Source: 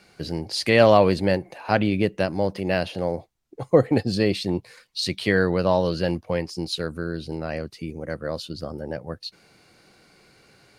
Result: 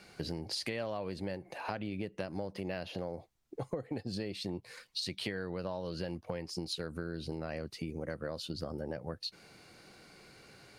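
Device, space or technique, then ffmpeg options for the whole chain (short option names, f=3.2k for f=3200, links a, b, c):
serial compression, peaks first: -filter_complex "[0:a]acompressor=threshold=-29dB:ratio=6,acompressor=threshold=-36dB:ratio=2,asettb=1/sr,asplit=3[a][b][c];[a]atrim=end=2.664[d];[b]atrim=start=2.66:end=3.13,asetpts=PTS-STARTPTS,afade=t=in:d=0.004:c=qsin,afade=t=out:st=0.466:d=0.004:c=qsin,equalizer=f=8.7k:w=6.9:g=-13.5[e];[c]atrim=start=3.126[f];[d][e]acrossfade=d=0.004:c1=hsin:c2=qsin[g];[g][f]acrossfade=d=0.004:c1=qsin:c2=hsin,volume=-1dB"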